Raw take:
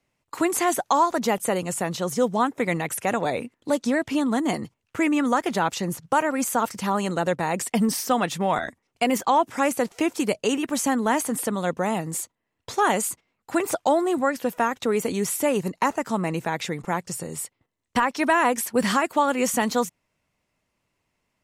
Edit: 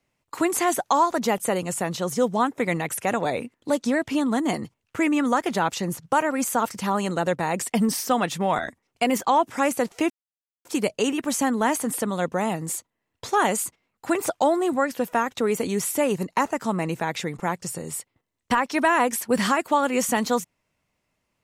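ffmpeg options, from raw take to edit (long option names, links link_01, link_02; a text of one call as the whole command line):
ffmpeg -i in.wav -filter_complex "[0:a]asplit=2[link_01][link_02];[link_01]atrim=end=10.1,asetpts=PTS-STARTPTS,afade=type=out:start_time=10.096:duration=0.004:curve=hsin,apad=pad_dur=0.55[link_03];[link_02]atrim=start=10.1,asetpts=PTS-STARTPTS,afade=type=in:duration=0.004:curve=hsin[link_04];[link_03][link_04]concat=n=2:v=0:a=1" out.wav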